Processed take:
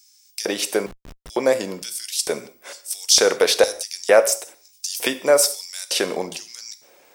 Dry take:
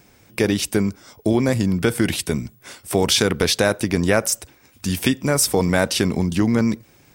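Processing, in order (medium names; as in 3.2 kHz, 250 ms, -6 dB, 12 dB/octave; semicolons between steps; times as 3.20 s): LFO high-pass square 1.1 Hz 530–5400 Hz; gated-style reverb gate 210 ms falling, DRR 11 dB; 0.86–1.30 s: Schmitt trigger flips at -33 dBFS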